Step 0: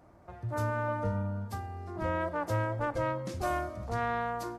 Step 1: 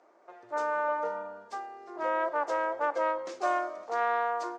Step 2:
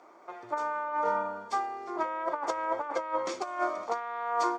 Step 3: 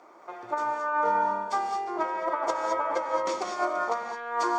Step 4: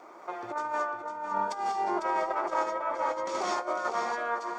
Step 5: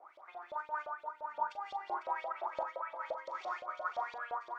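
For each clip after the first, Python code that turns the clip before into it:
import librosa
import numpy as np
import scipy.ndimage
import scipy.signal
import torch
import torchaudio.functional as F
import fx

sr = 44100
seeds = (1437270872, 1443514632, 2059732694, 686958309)

y1 = scipy.signal.sosfilt(scipy.signal.cheby1(3, 1.0, [380.0, 7000.0], 'bandpass', fs=sr, output='sos'), x)
y1 = fx.dynamic_eq(y1, sr, hz=910.0, q=0.8, threshold_db=-46.0, ratio=4.0, max_db=6)
y2 = y1 + 0.36 * np.pad(y1, (int(0.9 * sr / 1000.0), 0))[:len(y1)]
y2 = fx.over_compress(y2, sr, threshold_db=-33.0, ratio=-0.5)
y2 = y2 * 10.0 ** (3.5 / 20.0)
y3 = fx.rev_gated(y2, sr, seeds[0], gate_ms=240, shape='rising', drr_db=3.0)
y3 = y3 * 10.0 ** (2.0 / 20.0)
y4 = fx.over_compress(y3, sr, threshold_db=-31.0, ratio=-0.5)
y4 = fx.wow_flutter(y4, sr, seeds[1], rate_hz=2.1, depth_cents=18.0)
y4 = y4 + 10.0 ** (-7.5 / 20.0) * np.pad(y4, (int(501 * sr / 1000.0), 0))[:len(y4)]
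y5 = fx.quant_dither(y4, sr, seeds[2], bits=10, dither='none')
y5 = fx.filter_lfo_bandpass(y5, sr, shape='saw_up', hz=5.8, low_hz=550.0, high_hz=4000.0, q=7.4)
y5 = fx.doubler(y5, sr, ms=40.0, db=-11.5)
y5 = y5 * 10.0 ** (1.5 / 20.0)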